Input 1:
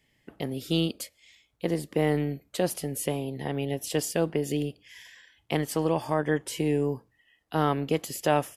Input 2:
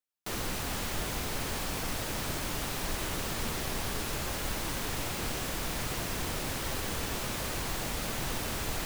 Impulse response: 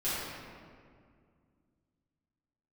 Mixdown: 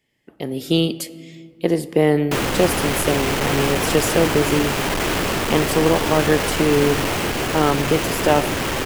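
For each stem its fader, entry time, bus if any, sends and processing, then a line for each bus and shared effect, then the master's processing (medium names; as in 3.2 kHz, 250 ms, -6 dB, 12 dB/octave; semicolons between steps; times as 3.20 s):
-2.5 dB, 0.00 s, send -23.5 dB, none
-2.5 dB, 2.05 s, no send, steep low-pass 3.3 kHz 72 dB/octave; companded quantiser 2-bit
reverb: on, RT60 2.1 s, pre-delay 5 ms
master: peaking EQ 380 Hz +3.5 dB 1 oct; level rider gain up to 10.5 dB; bass shelf 65 Hz -8 dB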